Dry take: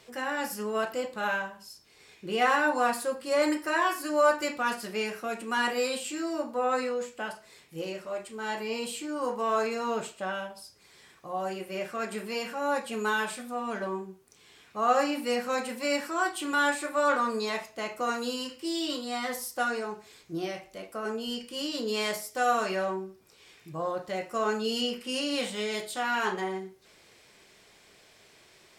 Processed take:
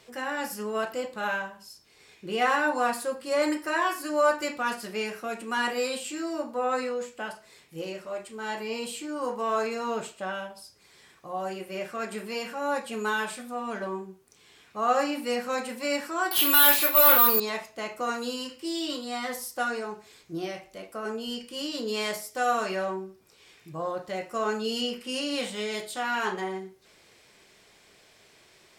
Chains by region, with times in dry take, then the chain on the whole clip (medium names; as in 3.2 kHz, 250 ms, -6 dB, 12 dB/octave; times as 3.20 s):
16.31–17.40 s: resonant high shelf 2.3 kHz +8.5 dB, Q 1.5 + overdrive pedal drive 16 dB, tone 3.2 kHz, clips at -14 dBFS + careless resampling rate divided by 3×, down filtered, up zero stuff
whole clip: none